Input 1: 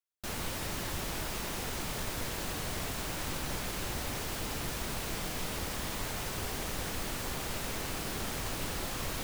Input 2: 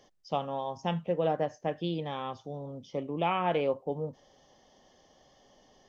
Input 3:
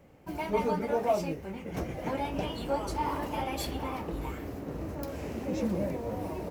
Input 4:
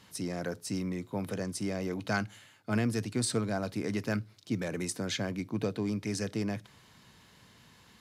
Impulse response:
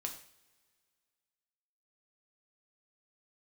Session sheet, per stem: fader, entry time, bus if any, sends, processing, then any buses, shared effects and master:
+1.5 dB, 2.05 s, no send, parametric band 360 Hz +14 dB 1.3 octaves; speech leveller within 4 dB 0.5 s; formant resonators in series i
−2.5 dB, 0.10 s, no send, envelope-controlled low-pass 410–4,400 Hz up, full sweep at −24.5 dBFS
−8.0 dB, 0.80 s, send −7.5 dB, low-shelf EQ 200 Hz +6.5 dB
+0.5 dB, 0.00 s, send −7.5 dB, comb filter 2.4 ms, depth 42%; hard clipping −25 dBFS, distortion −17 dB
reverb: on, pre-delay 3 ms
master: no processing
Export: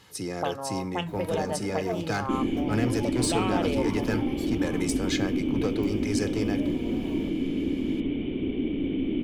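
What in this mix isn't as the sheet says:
stem 1 +1.5 dB → +12.5 dB
stem 3: send off

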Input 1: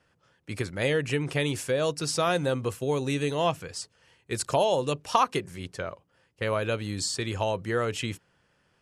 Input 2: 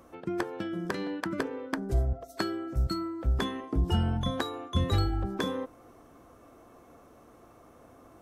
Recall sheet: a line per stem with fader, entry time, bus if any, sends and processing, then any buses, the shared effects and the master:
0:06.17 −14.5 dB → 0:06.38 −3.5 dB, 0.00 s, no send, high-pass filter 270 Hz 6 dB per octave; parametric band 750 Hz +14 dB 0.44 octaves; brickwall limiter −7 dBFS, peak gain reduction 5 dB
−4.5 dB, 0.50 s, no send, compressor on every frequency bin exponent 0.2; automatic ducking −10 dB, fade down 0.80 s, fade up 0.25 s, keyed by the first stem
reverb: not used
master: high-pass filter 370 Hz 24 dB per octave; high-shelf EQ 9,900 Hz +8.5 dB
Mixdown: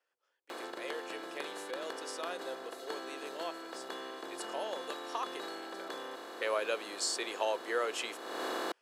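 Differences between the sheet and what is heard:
stem 1: missing parametric band 750 Hz +14 dB 0.44 octaves
master: missing high-shelf EQ 9,900 Hz +8.5 dB

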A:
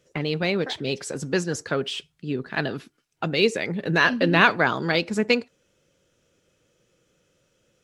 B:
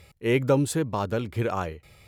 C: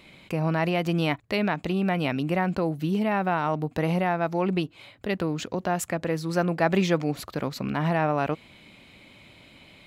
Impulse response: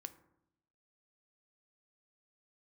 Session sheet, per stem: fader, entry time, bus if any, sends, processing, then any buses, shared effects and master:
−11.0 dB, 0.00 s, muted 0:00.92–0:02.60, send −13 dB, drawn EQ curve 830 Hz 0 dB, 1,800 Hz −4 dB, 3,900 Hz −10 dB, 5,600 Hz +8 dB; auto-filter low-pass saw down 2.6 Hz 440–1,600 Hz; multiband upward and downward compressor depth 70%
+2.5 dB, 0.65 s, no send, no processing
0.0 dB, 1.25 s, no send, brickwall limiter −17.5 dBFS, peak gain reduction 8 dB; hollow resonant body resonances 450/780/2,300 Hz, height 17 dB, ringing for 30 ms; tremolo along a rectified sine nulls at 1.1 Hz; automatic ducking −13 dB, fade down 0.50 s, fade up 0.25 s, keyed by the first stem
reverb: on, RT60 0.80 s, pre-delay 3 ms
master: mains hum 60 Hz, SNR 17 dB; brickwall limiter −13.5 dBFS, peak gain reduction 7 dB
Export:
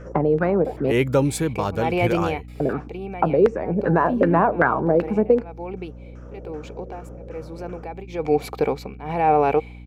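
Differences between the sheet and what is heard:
stem A −11.0 dB → +1.0 dB
master: missing brickwall limiter −13.5 dBFS, peak gain reduction 7 dB

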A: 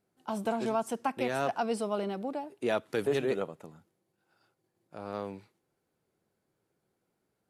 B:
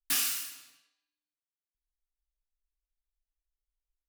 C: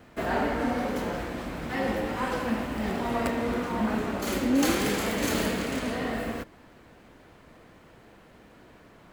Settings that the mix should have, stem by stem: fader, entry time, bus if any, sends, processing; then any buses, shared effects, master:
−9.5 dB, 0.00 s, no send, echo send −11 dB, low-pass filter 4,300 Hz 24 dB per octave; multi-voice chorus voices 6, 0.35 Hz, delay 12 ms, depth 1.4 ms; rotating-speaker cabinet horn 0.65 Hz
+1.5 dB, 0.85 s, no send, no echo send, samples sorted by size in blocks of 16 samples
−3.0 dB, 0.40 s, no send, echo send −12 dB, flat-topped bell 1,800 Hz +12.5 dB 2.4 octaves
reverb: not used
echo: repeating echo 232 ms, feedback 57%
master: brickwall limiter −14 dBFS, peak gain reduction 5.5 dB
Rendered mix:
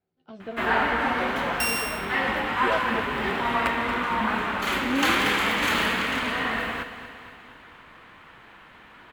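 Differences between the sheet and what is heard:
stem A −9.5 dB → +2.0 dB
stem B: entry 0.85 s → 1.50 s
master: missing brickwall limiter −14 dBFS, peak gain reduction 5.5 dB

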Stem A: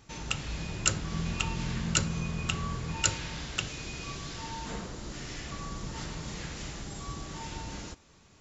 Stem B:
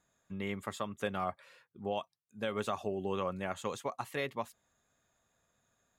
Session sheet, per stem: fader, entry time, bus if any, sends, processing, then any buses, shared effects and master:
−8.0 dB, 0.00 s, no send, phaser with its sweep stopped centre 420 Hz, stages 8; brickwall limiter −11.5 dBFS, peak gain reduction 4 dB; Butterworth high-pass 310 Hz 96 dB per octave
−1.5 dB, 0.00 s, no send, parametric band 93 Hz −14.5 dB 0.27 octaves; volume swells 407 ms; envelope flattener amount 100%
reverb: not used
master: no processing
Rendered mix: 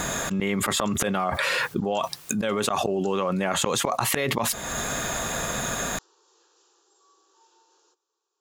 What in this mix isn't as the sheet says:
stem A −8.0 dB → −17.0 dB
stem B −1.5 dB → +8.0 dB

